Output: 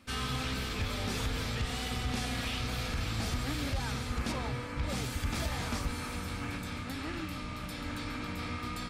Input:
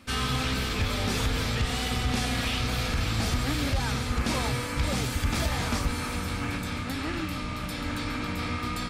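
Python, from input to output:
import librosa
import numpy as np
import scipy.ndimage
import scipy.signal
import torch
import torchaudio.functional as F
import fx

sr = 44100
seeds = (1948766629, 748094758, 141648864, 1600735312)

y = fx.lowpass(x, sr, hz=2500.0, slope=6, at=(4.31, 4.88), fade=0.02)
y = y * 10.0 ** (-6.5 / 20.0)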